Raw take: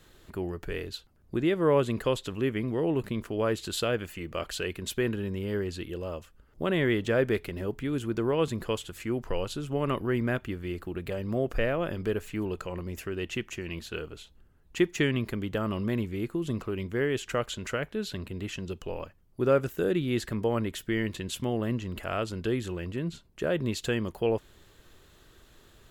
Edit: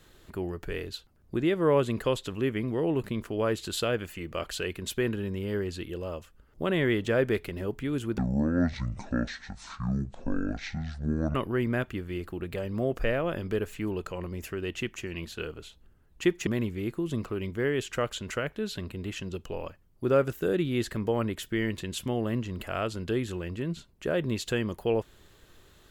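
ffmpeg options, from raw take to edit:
ffmpeg -i in.wav -filter_complex "[0:a]asplit=4[link_01][link_02][link_03][link_04];[link_01]atrim=end=8.184[link_05];[link_02]atrim=start=8.18:end=9.89,asetpts=PTS-STARTPTS,asetrate=23814,aresample=44100[link_06];[link_03]atrim=start=9.886:end=15.012[link_07];[link_04]atrim=start=15.828[link_08];[link_05][link_06]acrossfade=duration=0.004:curve1=hsin:curve2=hsin[link_09];[link_09][link_07]acrossfade=duration=0.004:curve1=hsin:curve2=hsin[link_10];[link_10][link_08]acrossfade=duration=0.004:curve1=hsin:curve2=hsin" out.wav

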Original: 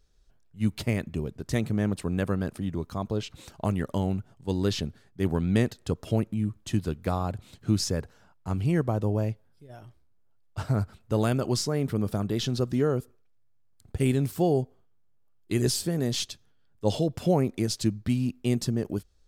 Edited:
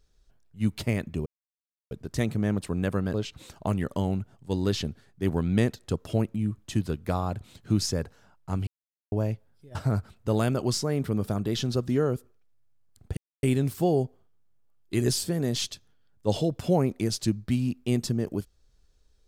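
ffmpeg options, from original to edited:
ffmpeg -i in.wav -filter_complex "[0:a]asplit=7[link_01][link_02][link_03][link_04][link_05][link_06][link_07];[link_01]atrim=end=1.26,asetpts=PTS-STARTPTS,afade=type=out:start_time=1.256:duration=0.004:curve=hsin,apad=pad_dur=0.65[link_08];[link_02]atrim=start=1.26:end=2.492,asetpts=PTS-STARTPTS,afade=type=in:duration=0.004:curve=hsin[link_09];[link_03]atrim=start=3.118:end=8.65,asetpts=PTS-STARTPTS,afade=type=out:start_time=5.528:duration=0.004:curve=hsin[link_10];[link_04]atrim=start=8.65:end=9.1,asetpts=PTS-STARTPTS,volume=0[link_11];[link_05]atrim=start=9.1:end=9.732,asetpts=PTS-STARTPTS,afade=type=in:duration=0.004:curve=hsin[link_12];[link_06]atrim=start=10.588:end=14.01,asetpts=PTS-STARTPTS,afade=type=out:start_time=3.418:duration=0.004:curve=hsin,apad=pad_dur=0.26[link_13];[link_07]atrim=start=14.01,asetpts=PTS-STARTPTS,afade=type=in:duration=0.004:curve=hsin[link_14];[link_08][link_09]concat=n=2:v=0:a=1[link_15];[link_10][link_11][link_12]concat=n=3:v=0:a=1[link_16];[link_15][link_16]acrossfade=duration=0.004:curve1=hsin:curve2=hsin[link_17];[link_13][link_14]concat=n=2:v=0:a=1[link_18];[link_17][link_18]acrossfade=duration=0.004:curve1=hsin:curve2=hsin" out.wav

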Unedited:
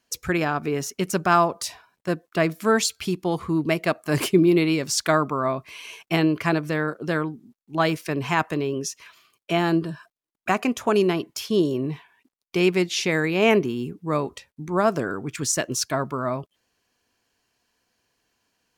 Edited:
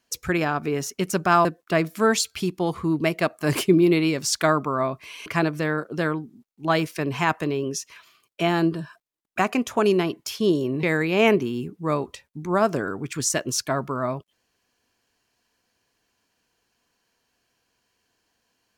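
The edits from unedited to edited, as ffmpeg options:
ffmpeg -i in.wav -filter_complex "[0:a]asplit=4[link_01][link_02][link_03][link_04];[link_01]atrim=end=1.452[link_05];[link_02]atrim=start=2.098:end=5.912[link_06];[link_03]atrim=start=6.358:end=11.932[link_07];[link_04]atrim=start=13.058[link_08];[link_05][link_06]acrossfade=duration=0.004:curve1=hsin:curve2=hsin[link_09];[link_09][link_07]acrossfade=duration=0.004:curve1=hsin:curve2=hsin[link_10];[link_10][link_08]acrossfade=duration=0.004:curve1=hsin:curve2=hsin" out.wav

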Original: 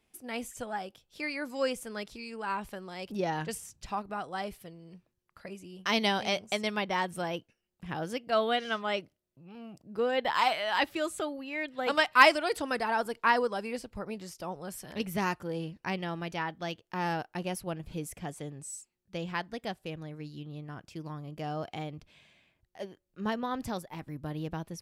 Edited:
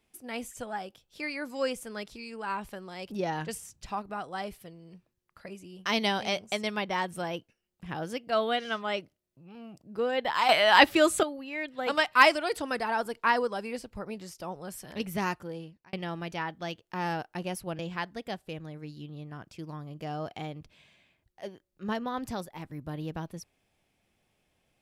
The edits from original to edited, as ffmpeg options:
ffmpeg -i in.wav -filter_complex "[0:a]asplit=5[link_01][link_02][link_03][link_04][link_05];[link_01]atrim=end=10.492[link_06];[link_02]atrim=start=10.488:end=11.232,asetpts=PTS-STARTPTS,volume=10dB[link_07];[link_03]atrim=start=11.228:end=15.93,asetpts=PTS-STARTPTS,afade=type=out:start_time=4.082:duration=0.62[link_08];[link_04]atrim=start=15.93:end=17.792,asetpts=PTS-STARTPTS,afade=type=in:duration=0.004:curve=hsin[link_09];[link_05]atrim=start=19.158[link_10];[link_06][link_07]acrossfade=duration=0.004:curve1=hsin:curve2=hsin[link_11];[link_08][link_09]concat=n=2:v=0:a=1[link_12];[link_11][link_12]acrossfade=duration=0.004:curve1=hsin:curve2=hsin[link_13];[link_13][link_10]acrossfade=duration=0.004:curve1=hsin:curve2=hsin" out.wav

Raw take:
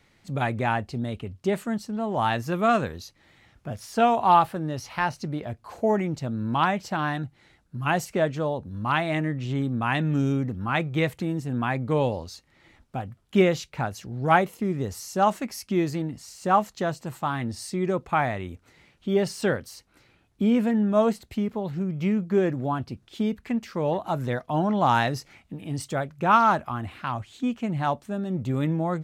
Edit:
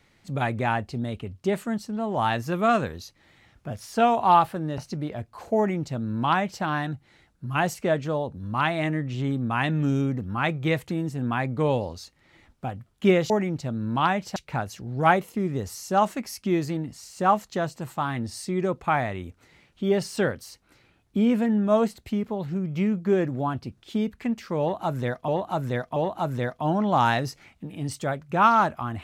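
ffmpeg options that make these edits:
ffmpeg -i in.wav -filter_complex "[0:a]asplit=6[link_01][link_02][link_03][link_04][link_05][link_06];[link_01]atrim=end=4.782[link_07];[link_02]atrim=start=5.088:end=13.612[link_08];[link_03]atrim=start=5.878:end=6.942[link_09];[link_04]atrim=start=13.608:end=24.532[link_10];[link_05]atrim=start=23.848:end=24.532[link_11];[link_06]atrim=start=23.848[link_12];[link_07][link_08]acrossfade=duration=0.004:curve1=hsin:curve2=hsin[link_13];[link_13][link_09]acrossfade=duration=0.004:curve1=hsin:curve2=hsin[link_14];[link_14][link_10]acrossfade=duration=0.004:curve1=hsin:curve2=hsin[link_15];[link_15][link_11]acrossfade=duration=0.004:curve1=hsin:curve2=hsin[link_16];[link_16][link_12]acrossfade=duration=0.004:curve1=hsin:curve2=hsin" out.wav

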